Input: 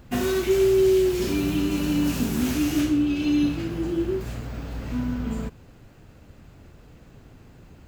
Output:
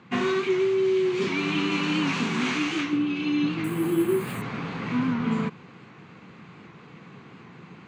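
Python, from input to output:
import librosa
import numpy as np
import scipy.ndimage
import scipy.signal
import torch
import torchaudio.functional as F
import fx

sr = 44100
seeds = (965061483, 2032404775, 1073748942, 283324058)

y = fx.low_shelf(x, sr, hz=390.0, db=-9.0, at=(1.28, 2.93))
y = fx.rider(y, sr, range_db=5, speed_s=0.5)
y = fx.cabinet(y, sr, low_hz=150.0, low_slope=24, high_hz=5500.0, hz=(180.0, 270.0, 600.0, 1100.0, 2200.0, 5200.0), db=(4, -5, -10, 8, 7, -8))
y = fx.resample_bad(y, sr, factor=4, down='filtered', up='hold', at=(3.64, 4.42))
y = fx.record_warp(y, sr, rpm=78.0, depth_cents=100.0)
y = y * librosa.db_to_amplitude(1.5)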